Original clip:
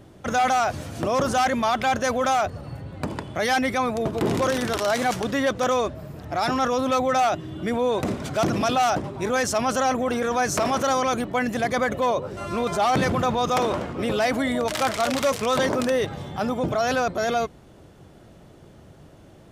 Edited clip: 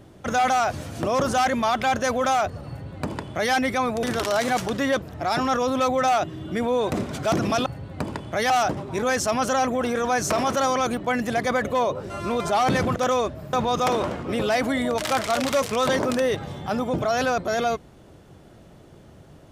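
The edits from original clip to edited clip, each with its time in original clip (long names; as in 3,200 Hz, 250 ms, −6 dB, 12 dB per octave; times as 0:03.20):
0:02.69–0:03.53: duplicate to 0:08.77
0:04.03–0:04.57: remove
0:05.56–0:06.13: move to 0:13.23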